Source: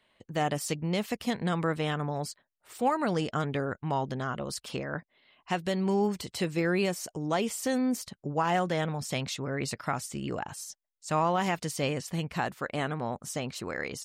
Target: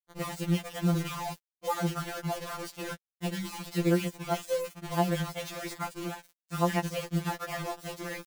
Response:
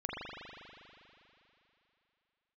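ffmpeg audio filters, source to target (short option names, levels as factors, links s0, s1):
-af "highshelf=f=7100:g=-9,atempo=1.7,acrusher=bits=5:mix=0:aa=0.000001,afftfilt=real='re*2.83*eq(mod(b,8),0)':imag='im*2.83*eq(mod(b,8),0)':win_size=2048:overlap=0.75"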